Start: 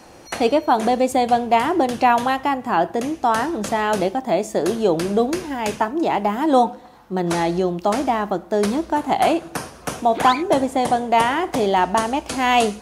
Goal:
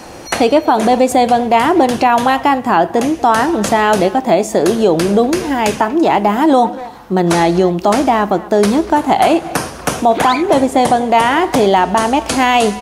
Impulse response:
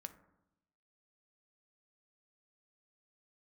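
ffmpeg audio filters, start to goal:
-filter_complex "[0:a]asplit=2[link_01][link_02];[link_02]acompressor=threshold=-27dB:ratio=6,volume=-0.5dB[link_03];[link_01][link_03]amix=inputs=2:normalize=0,asplit=2[link_04][link_05];[link_05]adelay=240,highpass=300,lowpass=3400,asoftclip=type=hard:threshold=-11dB,volume=-18dB[link_06];[link_04][link_06]amix=inputs=2:normalize=0,alimiter=level_in=7dB:limit=-1dB:release=50:level=0:latency=1,volume=-1dB"

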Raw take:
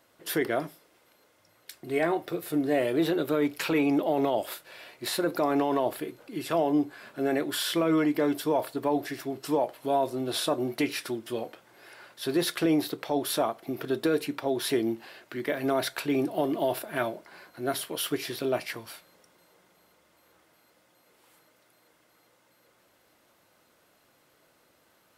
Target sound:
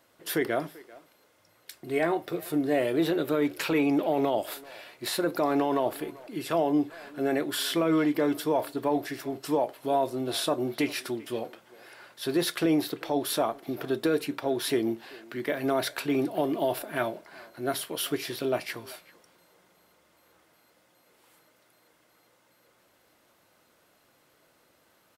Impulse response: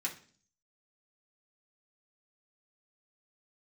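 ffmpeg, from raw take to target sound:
-filter_complex "[0:a]asplit=2[link_01][link_02];[link_02]adelay=390,highpass=300,lowpass=3400,asoftclip=type=hard:threshold=-22.5dB,volume=-20dB[link_03];[link_01][link_03]amix=inputs=2:normalize=0"

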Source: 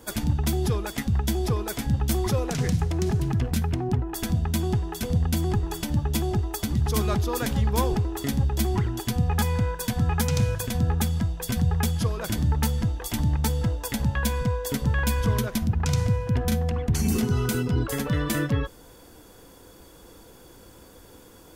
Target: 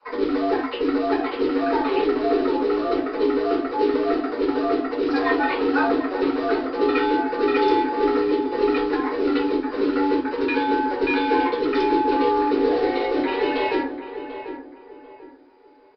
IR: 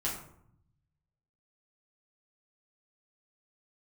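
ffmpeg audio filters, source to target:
-filter_complex "[0:a]highpass=frequency=130:poles=1,afwtdn=0.0141,equalizer=frequency=280:width_type=o:width=0.26:gain=-10.5,afreqshift=240,acrusher=bits=3:mode=log:mix=0:aa=0.000001,afreqshift=-100,asplit=2[link_01][link_02];[link_02]adelay=1001,lowpass=frequency=1400:poles=1,volume=-10dB,asplit=2[link_03][link_04];[link_04]adelay=1001,lowpass=frequency=1400:poles=1,volume=0.32,asplit=2[link_05][link_06];[link_06]adelay=1001,lowpass=frequency=1400:poles=1,volume=0.32,asplit=2[link_07][link_08];[link_08]adelay=1001,lowpass=frequency=1400:poles=1,volume=0.32[link_09];[link_01][link_03][link_05][link_07][link_09]amix=inputs=5:normalize=0[link_10];[1:a]atrim=start_sample=2205,afade=type=out:start_time=0.17:duration=0.01,atrim=end_sample=7938[link_11];[link_10][link_11]afir=irnorm=-1:irlink=0,asetrate=59535,aresample=44100,aresample=11025,aresample=44100,volume=1dB"

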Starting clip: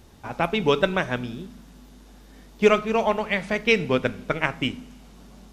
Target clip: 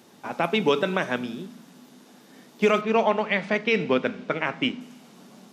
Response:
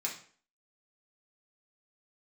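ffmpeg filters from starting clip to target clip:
-filter_complex "[0:a]highpass=frequency=170:width=0.5412,highpass=frequency=170:width=1.3066,alimiter=limit=-12dB:level=0:latency=1:release=20,asettb=1/sr,asplit=3[link_01][link_02][link_03];[link_01]atrim=end=2.814[link_04];[link_02]atrim=start=2.81:end=4.81,asetpts=PTS-STARTPTS,afade=type=in:duration=0.004:curve=qsin,afade=type=out:start_time=1.996:duration=0.004:curve=qsin,lowpass=4800[link_05];[link_03]atrim=start=4.806[link_06];[link_04][link_05]acrossfade=duration=0.004:curve1=hsin:curve2=qsin[link_07];[link_07][link_06]acrossfade=duration=0.004:curve1=qsin:curve2=hsin,volume=1.5dB"

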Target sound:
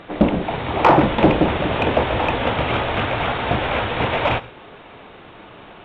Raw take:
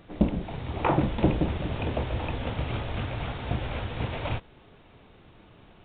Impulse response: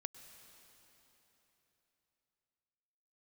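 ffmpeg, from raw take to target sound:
-filter_complex "[0:a]asplit=2[link_01][link_02];[link_02]highpass=frequency=720:poles=1,volume=18dB,asoftclip=type=tanh:threshold=-7dB[link_03];[link_01][link_03]amix=inputs=2:normalize=0,lowpass=frequency=2000:poles=1,volume=-6dB,asplit=2[link_04][link_05];[1:a]atrim=start_sample=2205,atrim=end_sample=6174[link_06];[link_05][link_06]afir=irnorm=-1:irlink=0,volume=10.5dB[link_07];[link_04][link_07]amix=inputs=2:normalize=0,volume=-3.5dB"

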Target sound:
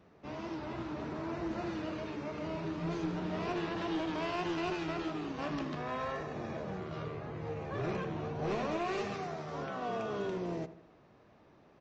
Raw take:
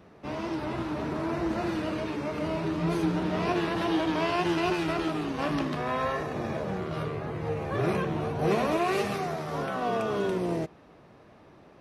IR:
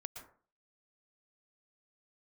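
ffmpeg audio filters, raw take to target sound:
-filter_complex "[0:a]aresample=16000,aeval=exprs='clip(val(0),-1,0.0708)':channel_layout=same,aresample=44100,asplit=2[link_01][link_02];[link_02]adelay=79,lowpass=frequency=2500:poles=1,volume=-14dB,asplit=2[link_03][link_04];[link_04]adelay=79,lowpass=frequency=2500:poles=1,volume=0.5,asplit=2[link_05][link_06];[link_06]adelay=79,lowpass=frequency=2500:poles=1,volume=0.5,asplit=2[link_07][link_08];[link_08]adelay=79,lowpass=frequency=2500:poles=1,volume=0.5,asplit=2[link_09][link_10];[link_10]adelay=79,lowpass=frequency=2500:poles=1,volume=0.5[link_11];[link_01][link_03][link_05][link_07][link_09][link_11]amix=inputs=6:normalize=0,volume=-8dB"

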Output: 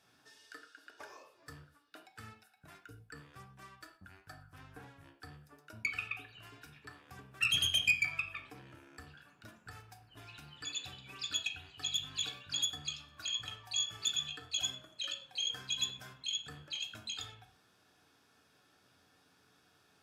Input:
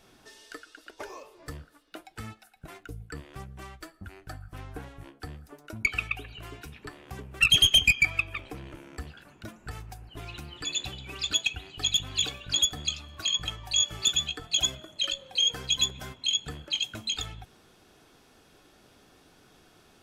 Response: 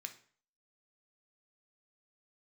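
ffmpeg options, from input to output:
-filter_complex "[1:a]atrim=start_sample=2205,atrim=end_sample=3969,asetrate=30870,aresample=44100[link_01];[0:a][link_01]afir=irnorm=-1:irlink=0,volume=-7dB"

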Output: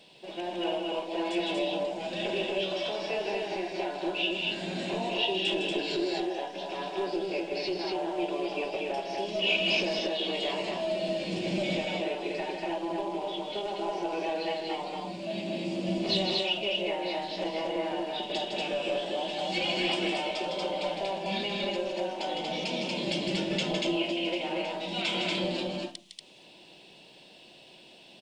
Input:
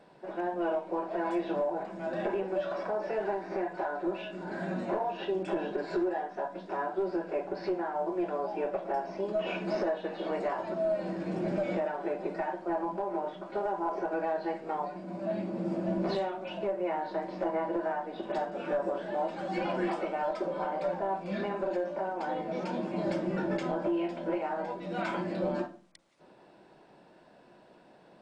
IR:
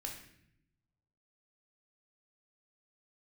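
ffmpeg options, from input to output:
-af "highshelf=frequency=2100:width_type=q:width=3:gain=12.5,aecho=1:1:157.4|236.2:0.501|0.794,volume=-1.5dB"

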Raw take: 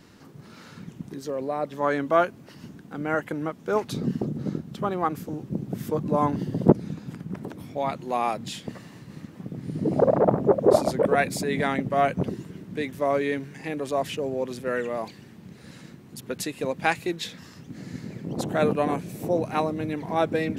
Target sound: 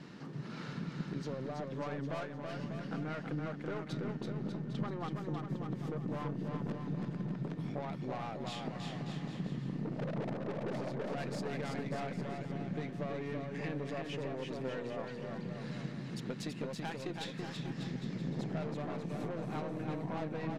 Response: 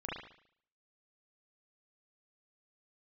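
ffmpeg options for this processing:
-filter_complex "[0:a]lowpass=4700,aeval=exprs='(tanh(17.8*val(0)+0.6)-tanh(0.6))/17.8':channel_layout=same,acompressor=threshold=-43dB:ratio=6,aeval=exprs='val(0)+0.000158*sin(2*PI*1800*n/s)':channel_layout=same,lowshelf=frequency=110:width_type=q:width=3:gain=-7.5,asplit=2[link_01][link_02];[link_02]aecho=0:1:330|594|805.2|974.2|1109:0.631|0.398|0.251|0.158|0.1[link_03];[link_01][link_03]amix=inputs=2:normalize=0,volume=3.5dB"

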